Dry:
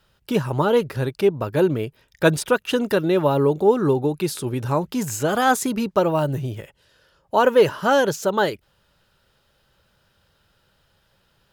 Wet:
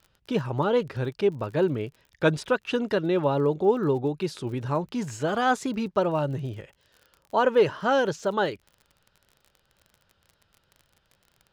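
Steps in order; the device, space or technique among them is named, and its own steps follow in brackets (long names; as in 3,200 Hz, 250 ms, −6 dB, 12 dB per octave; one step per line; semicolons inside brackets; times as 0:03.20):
lo-fi chain (low-pass filter 5,200 Hz 12 dB per octave; tape wow and flutter; surface crackle 41 per second −35 dBFS)
level −5 dB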